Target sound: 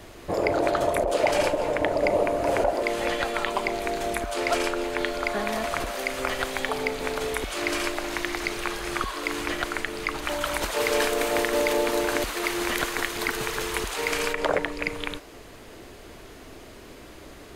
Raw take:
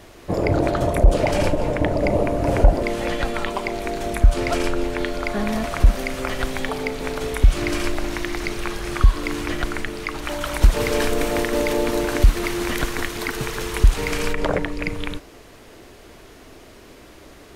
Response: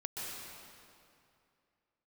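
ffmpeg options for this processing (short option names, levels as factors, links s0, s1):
-filter_complex "[0:a]bandreject=f=5600:w=23,acrossover=split=360[s0][s1];[s0]acompressor=threshold=0.0178:ratio=16[s2];[s2][s1]amix=inputs=2:normalize=0"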